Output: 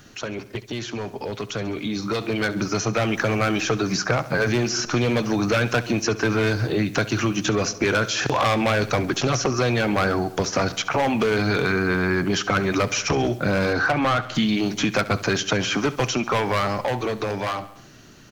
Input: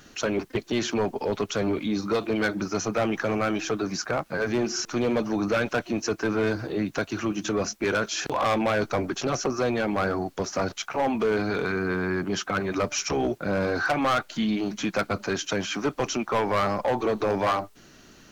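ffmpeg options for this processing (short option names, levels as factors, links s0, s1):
-filter_complex "[0:a]equalizer=f=120:t=o:w=0.56:g=10,aecho=1:1:67|134|201|268:0.126|0.0642|0.0327|0.0167,acrossover=split=1800|5700[s0][s1][s2];[s0]acompressor=threshold=0.0282:ratio=4[s3];[s1]acompressor=threshold=0.0158:ratio=4[s4];[s2]acompressor=threshold=0.00316:ratio=4[s5];[s3][s4][s5]amix=inputs=3:normalize=0,asettb=1/sr,asplit=3[s6][s7][s8];[s6]atrim=end=13.734[s9];[s7]atrim=start=13.73:end=14.35,asetpts=PTS-STARTPTS,afade=t=in:d=0.004:c=qsin,afade=t=out:st=0.616:d=0.004:c=qsin,highshelf=f=3900:g=-9.5[s10];[s8]atrim=start=14.346[s11];[s9][s10]acrossfade=d=0.004:c1=hsin:c2=qsin[s12];[s12][s11]acrossfade=d=0.004:c1=qsin:c2=hsin,dynaudnorm=f=350:g=13:m=2.82,volume=1.19"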